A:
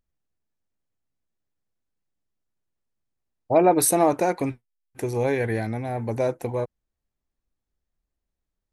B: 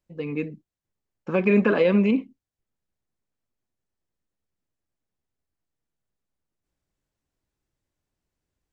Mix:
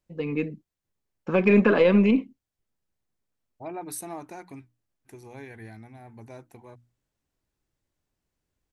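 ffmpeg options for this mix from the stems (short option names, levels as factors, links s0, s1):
-filter_complex "[0:a]equalizer=f=520:w=2.5:g=-11.5,bandreject=f=60:t=h:w=6,bandreject=f=120:t=h:w=6,bandreject=f=180:t=h:w=6,bandreject=f=240:t=h:w=6,bandreject=f=300:t=h:w=6,adelay=100,volume=0.178[s0];[1:a]aeval=exprs='0.376*(cos(1*acos(clip(val(0)/0.376,-1,1)))-cos(1*PI/2))+0.0106*(cos(4*acos(clip(val(0)/0.376,-1,1)))-cos(4*PI/2))':c=same,volume=1.12[s1];[s0][s1]amix=inputs=2:normalize=0"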